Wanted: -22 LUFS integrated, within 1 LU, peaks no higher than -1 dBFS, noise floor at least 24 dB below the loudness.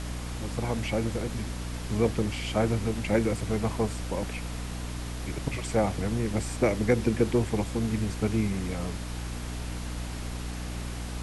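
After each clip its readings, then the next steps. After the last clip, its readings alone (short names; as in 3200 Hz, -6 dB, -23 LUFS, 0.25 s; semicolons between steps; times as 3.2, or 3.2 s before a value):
hum 60 Hz; harmonics up to 300 Hz; hum level -33 dBFS; noise floor -35 dBFS; noise floor target -54 dBFS; loudness -30.0 LUFS; peak -10.5 dBFS; loudness target -22.0 LUFS
-> de-hum 60 Hz, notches 5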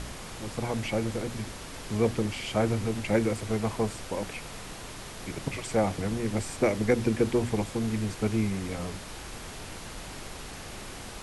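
hum none; noise floor -42 dBFS; noise floor target -55 dBFS
-> noise print and reduce 13 dB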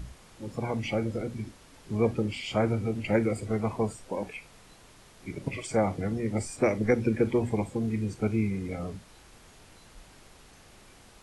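noise floor -55 dBFS; loudness -30.0 LUFS; peak -12.0 dBFS; loudness target -22.0 LUFS
-> gain +8 dB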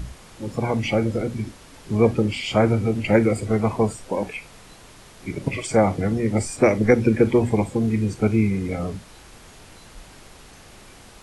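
loudness -22.0 LUFS; peak -4.0 dBFS; noise floor -47 dBFS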